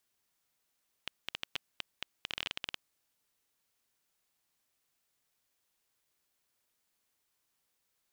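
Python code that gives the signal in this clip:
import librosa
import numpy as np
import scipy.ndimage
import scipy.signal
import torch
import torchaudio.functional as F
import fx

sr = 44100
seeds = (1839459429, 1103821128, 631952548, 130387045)

y = fx.geiger_clicks(sr, seeds[0], length_s=1.89, per_s=11.0, level_db=-17.5)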